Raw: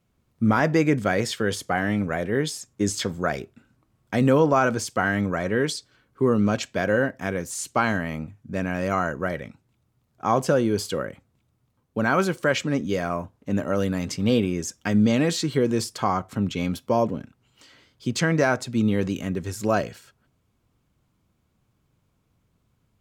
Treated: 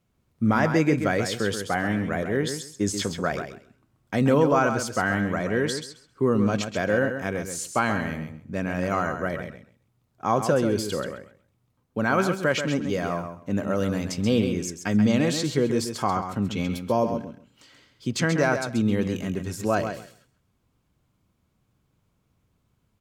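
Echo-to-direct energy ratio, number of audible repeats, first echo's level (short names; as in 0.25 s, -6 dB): -8.0 dB, 2, -8.0 dB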